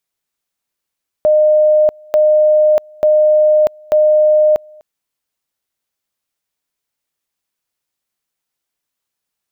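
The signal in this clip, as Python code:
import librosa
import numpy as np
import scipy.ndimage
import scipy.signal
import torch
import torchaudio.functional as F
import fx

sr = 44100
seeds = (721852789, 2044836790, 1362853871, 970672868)

y = fx.two_level_tone(sr, hz=611.0, level_db=-7.0, drop_db=29.5, high_s=0.64, low_s=0.25, rounds=4)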